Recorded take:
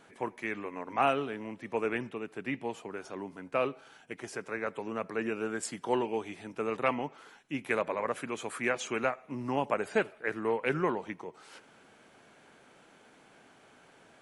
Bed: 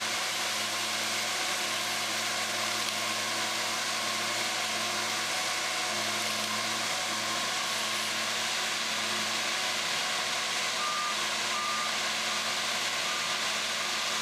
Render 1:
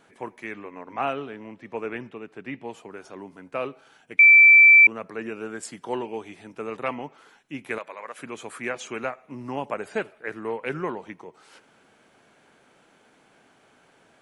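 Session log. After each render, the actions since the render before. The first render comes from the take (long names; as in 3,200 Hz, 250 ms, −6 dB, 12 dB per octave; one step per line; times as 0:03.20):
0:00.55–0:02.68: high-frequency loss of the air 64 metres
0:04.19–0:04.87: beep over 2,330 Hz −8.5 dBFS
0:07.78–0:08.19: high-pass filter 1,300 Hz 6 dB per octave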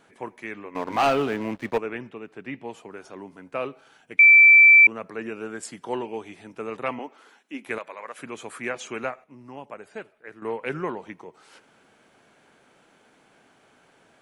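0:00.75–0:01.78: leveller curve on the samples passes 3
0:06.99–0:07.67: Butterworth high-pass 200 Hz 48 dB per octave
0:09.24–0:10.42: clip gain −9.5 dB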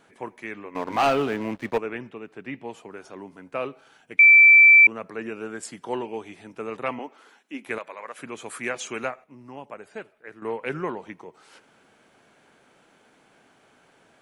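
0:08.46–0:09.08: high-shelf EQ 3,600 Hz +6.5 dB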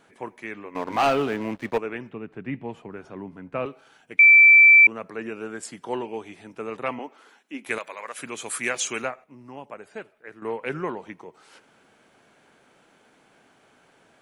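0:02.11–0:03.66: bass and treble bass +10 dB, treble −12 dB
0:07.66–0:09.02: high-shelf EQ 2,700 Hz +10.5 dB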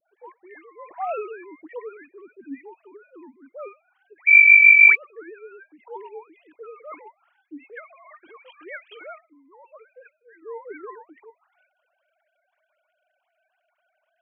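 three sine waves on the formant tracks
all-pass dispersion highs, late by 124 ms, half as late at 1,700 Hz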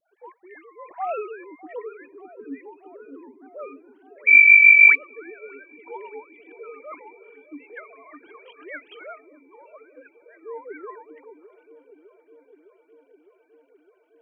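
delay with a low-pass on its return 608 ms, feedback 76%, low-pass 410 Hz, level −8 dB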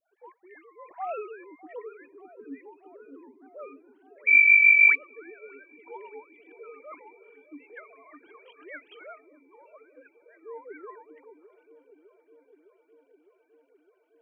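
level −5.5 dB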